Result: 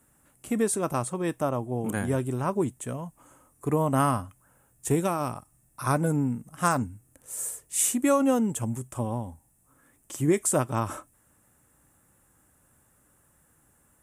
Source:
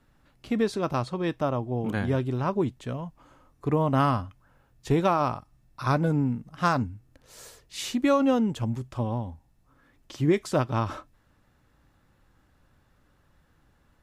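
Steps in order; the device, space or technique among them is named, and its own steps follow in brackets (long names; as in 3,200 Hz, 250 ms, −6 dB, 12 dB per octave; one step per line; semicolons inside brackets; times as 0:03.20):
0:04.95–0:05.36: parametric band 940 Hz −6 dB 1.9 octaves
budget condenser microphone (high-pass filter 100 Hz 6 dB per octave; high shelf with overshoot 6,300 Hz +13.5 dB, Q 3)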